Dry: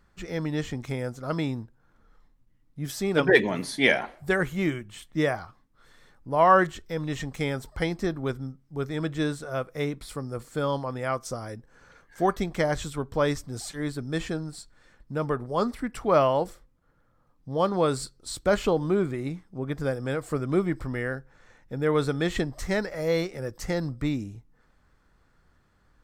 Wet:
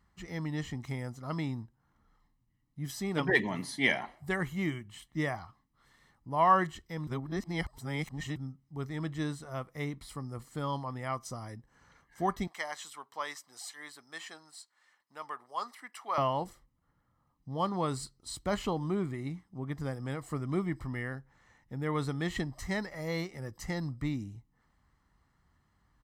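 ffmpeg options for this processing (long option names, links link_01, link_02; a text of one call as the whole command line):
ffmpeg -i in.wav -filter_complex "[0:a]asettb=1/sr,asplit=3[link_01][link_02][link_03];[link_01]atrim=end=12.474[link_04];[link_02]atrim=start=12.47:end=16.18,asetpts=PTS-STARTPTS,afade=type=in:duration=0.004:curve=qsin,afade=type=out:start_time=3.706:duration=0.004:curve=qsin,highpass=840[link_05];[link_03]atrim=start=16.176[link_06];[link_04][link_05]acrossfade=duration=0.004:curve1=hsin:curve2=qsin[link_07];[link_07][link_06]acrossfade=duration=0.004:curve1=qsin:curve2=hsin,asplit=3[link_08][link_09][link_10];[link_08]atrim=end=7.072[link_11];[link_09]atrim=start=7.068:end=8.362,asetpts=PTS-STARTPTS,areverse[link_12];[link_10]atrim=start=8.358[link_13];[link_11][link_12]acrossfade=duration=0.004:curve1=hsin:curve2=hsin[link_14];[link_14][link_13]acrossfade=duration=0.004:curve1=hsin:curve2=hsin,highpass=42,aecho=1:1:1:0.51,volume=-7dB" out.wav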